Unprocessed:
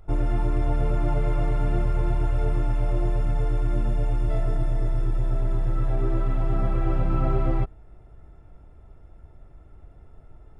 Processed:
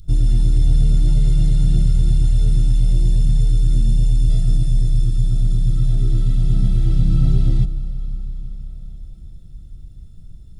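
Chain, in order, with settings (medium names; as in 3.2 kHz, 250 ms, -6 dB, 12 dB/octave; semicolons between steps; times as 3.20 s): FFT filter 110 Hz 0 dB, 180 Hz +3 dB, 370 Hz -16 dB, 970 Hz -28 dB, 1.6 kHz -19 dB, 2.4 kHz -15 dB, 3.7 kHz +7 dB; on a send: reverberation RT60 5.3 s, pre-delay 115 ms, DRR 13 dB; on the sum: trim +8.5 dB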